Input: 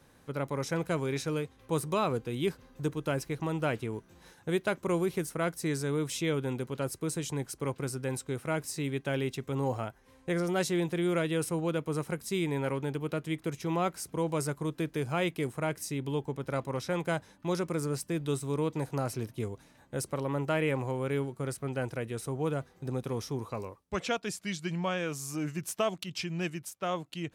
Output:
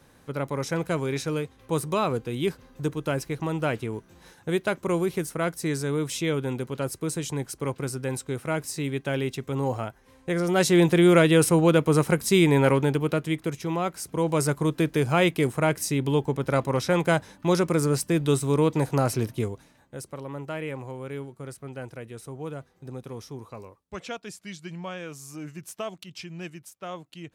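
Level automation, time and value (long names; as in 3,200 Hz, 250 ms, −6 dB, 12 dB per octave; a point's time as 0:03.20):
0:10.36 +4 dB
0:10.83 +12 dB
0:12.70 +12 dB
0:13.83 +2 dB
0:14.53 +9 dB
0:19.32 +9 dB
0:19.98 −4 dB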